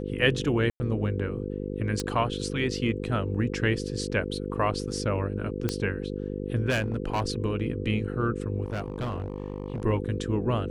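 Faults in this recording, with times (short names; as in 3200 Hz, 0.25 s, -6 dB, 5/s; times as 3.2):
buzz 50 Hz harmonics 10 -33 dBFS
0.7–0.8 gap 0.1 s
2 pop -15 dBFS
5.69 pop -12 dBFS
6.69–7.22 clipped -22 dBFS
8.64–9.84 clipped -27 dBFS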